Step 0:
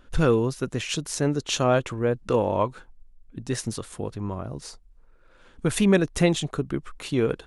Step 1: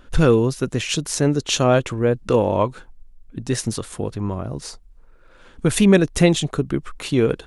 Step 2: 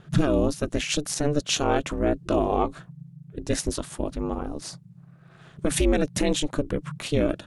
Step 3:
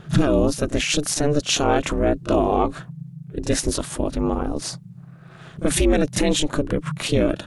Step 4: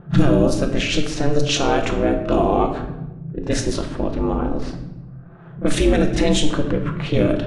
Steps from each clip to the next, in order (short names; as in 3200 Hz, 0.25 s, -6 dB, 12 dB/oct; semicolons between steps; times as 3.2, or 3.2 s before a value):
dynamic EQ 1100 Hz, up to -3 dB, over -37 dBFS, Q 0.79; gain +6 dB
limiter -10 dBFS, peak gain reduction 8.5 dB; ring modulator 150 Hz
in parallel at +3 dB: limiter -21 dBFS, peak gain reduction 11 dB; on the sum: pre-echo 32 ms -14.5 dB
low-pass opened by the level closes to 960 Hz, open at -13 dBFS; shoebox room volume 400 m³, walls mixed, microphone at 0.79 m